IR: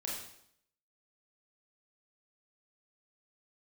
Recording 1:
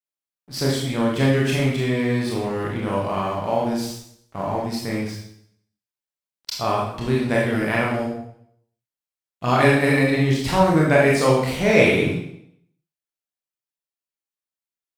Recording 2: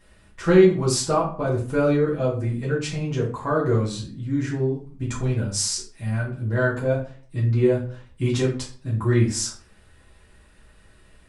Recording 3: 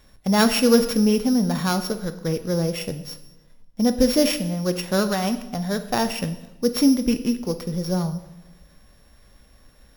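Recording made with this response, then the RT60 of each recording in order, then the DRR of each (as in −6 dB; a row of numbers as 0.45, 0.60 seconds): 1; 0.70, 0.45, 0.95 seconds; −4.0, −6.5, 9.0 decibels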